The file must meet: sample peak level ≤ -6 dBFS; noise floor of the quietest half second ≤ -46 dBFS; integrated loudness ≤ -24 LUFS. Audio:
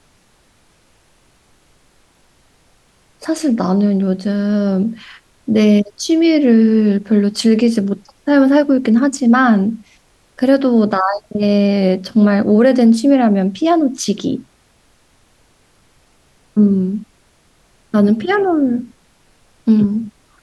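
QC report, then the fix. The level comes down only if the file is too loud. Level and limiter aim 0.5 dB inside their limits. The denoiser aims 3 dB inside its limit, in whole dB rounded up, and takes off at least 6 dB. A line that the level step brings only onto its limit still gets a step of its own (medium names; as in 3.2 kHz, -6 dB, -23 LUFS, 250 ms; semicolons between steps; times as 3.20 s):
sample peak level -3.0 dBFS: fail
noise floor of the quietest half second -54 dBFS: pass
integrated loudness -14.5 LUFS: fail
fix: trim -10 dB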